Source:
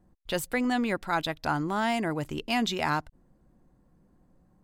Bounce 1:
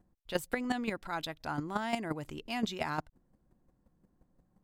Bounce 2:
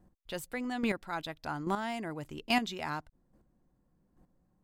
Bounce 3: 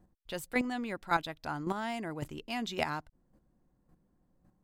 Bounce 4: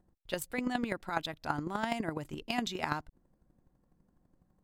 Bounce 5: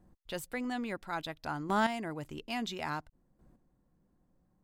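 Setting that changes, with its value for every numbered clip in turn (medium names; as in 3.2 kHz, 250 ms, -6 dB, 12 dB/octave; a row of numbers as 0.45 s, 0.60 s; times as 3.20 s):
square tremolo, rate: 5.7 Hz, 1.2 Hz, 1.8 Hz, 12 Hz, 0.59 Hz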